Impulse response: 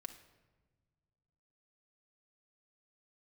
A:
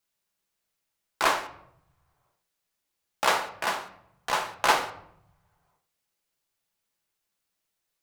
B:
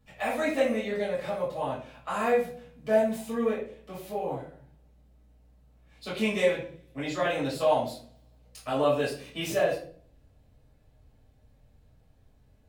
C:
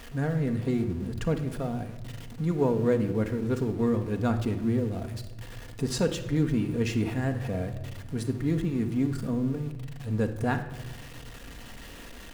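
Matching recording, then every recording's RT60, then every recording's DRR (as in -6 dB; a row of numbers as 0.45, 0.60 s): C; 0.75, 0.50, 1.3 s; 5.0, -8.0, 4.5 dB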